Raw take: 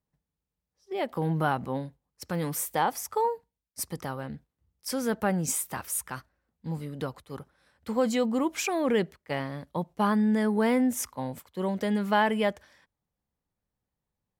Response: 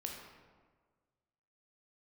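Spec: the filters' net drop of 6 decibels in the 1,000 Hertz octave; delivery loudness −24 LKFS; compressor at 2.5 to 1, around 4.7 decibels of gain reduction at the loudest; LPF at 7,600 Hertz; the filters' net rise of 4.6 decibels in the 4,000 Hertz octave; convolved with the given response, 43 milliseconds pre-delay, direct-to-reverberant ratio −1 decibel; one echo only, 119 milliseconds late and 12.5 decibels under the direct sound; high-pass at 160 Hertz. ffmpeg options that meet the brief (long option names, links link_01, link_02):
-filter_complex "[0:a]highpass=160,lowpass=7600,equalizer=frequency=1000:width_type=o:gain=-8,equalizer=frequency=4000:width_type=o:gain=7.5,acompressor=threshold=-29dB:ratio=2.5,aecho=1:1:119:0.237,asplit=2[link_01][link_02];[1:a]atrim=start_sample=2205,adelay=43[link_03];[link_02][link_03]afir=irnorm=-1:irlink=0,volume=2dB[link_04];[link_01][link_04]amix=inputs=2:normalize=0,volume=6dB"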